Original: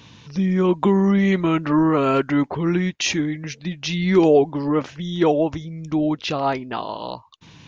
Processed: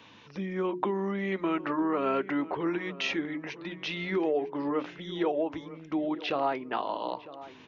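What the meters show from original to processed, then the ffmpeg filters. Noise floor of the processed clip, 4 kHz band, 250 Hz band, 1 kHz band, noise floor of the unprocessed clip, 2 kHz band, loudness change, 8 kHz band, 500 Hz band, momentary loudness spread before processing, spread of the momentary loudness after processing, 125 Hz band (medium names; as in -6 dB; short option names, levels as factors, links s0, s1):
-52 dBFS, -9.0 dB, -12.0 dB, -7.0 dB, -48 dBFS, -6.5 dB, -11.0 dB, no reading, -10.0 dB, 12 LU, 9 LU, -18.0 dB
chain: -filter_complex "[0:a]aresample=16000,aresample=44100,acrossover=split=5500[s0][s1];[s1]acompressor=threshold=0.00178:ratio=4:attack=1:release=60[s2];[s0][s2]amix=inputs=2:normalize=0,equalizer=f=160:t=o:w=0.25:g=-6.5,acompressor=threshold=0.0891:ratio=6,acrossover=split=240 3300:gain=0.2 1 0.251[s3][s4][s5];[s3][s4][s5]amix=inputs=3:normalize=0,bandreject=f=60:t=h:w=6,bandreject=f=120:t=h:w=6,bandreject=f=180:t=h:w=6,bandreject=f=240:t=h:w=6,bandreject=f=300:t=h:w=6,bandreject=f=360:t=h:w=6,bandreject=f=420:t=h:w=6,asplit=2[s6][s7];[s7]adelay=953,lowpass=f=2000:p=1,volume=0.158,asplit=2[s8][s9];[s9]adelay=953,lowpass=f=2000:p=1,volume=0.36,asplit=2[s10][s11];[s11]adelay=953,lowpass=f=2000:p=1,volume=0.36[s12];[s6][s8][s10][s12]amix=inputs=4:normalize=0,volume=0.75"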